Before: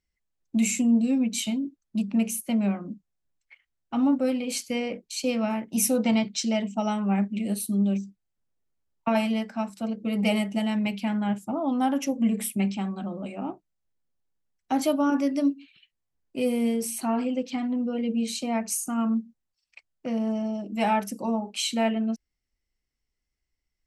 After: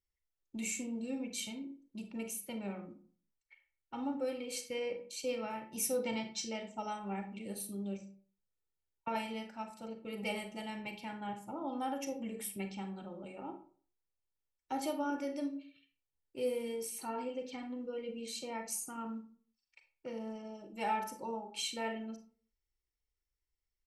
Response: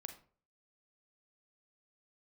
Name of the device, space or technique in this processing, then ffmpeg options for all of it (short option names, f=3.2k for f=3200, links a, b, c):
microphone above a desk: -filter_complex "[0:a]aecho=1:1:2.2:0.59[a];[1:a]atrim=start_sample=2205[b];[a][b]afir=irnorm=-1:irlink=0,volume=-6.5dB"